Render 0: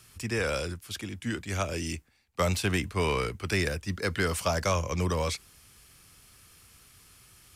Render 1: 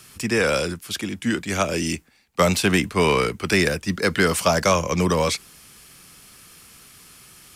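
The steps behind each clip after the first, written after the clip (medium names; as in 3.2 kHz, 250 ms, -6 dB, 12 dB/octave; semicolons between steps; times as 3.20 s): resonant low shelf 130 Hz -7 dB, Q 1.5; trim +9 dB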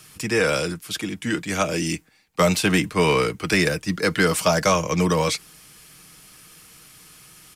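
comb 6.4 ms, depth 41%; trim -1 dB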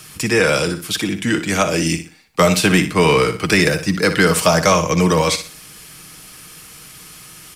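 flutter echo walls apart 10.3 m, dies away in 0.34 s; in parallel at -2 dB: compression, threshold -26 dBFS, peak gain reduction 12 dB; on the sum: trim +3 dB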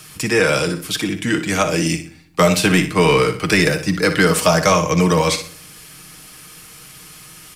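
reverberation RT60 0.55 s, pre-delay 6 ms, DRR 12.5 dB; trim -1 dB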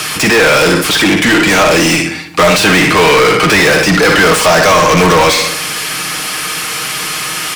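overdrive pedal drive 36 dB, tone 3.4 kHz, clips at -1 dBFS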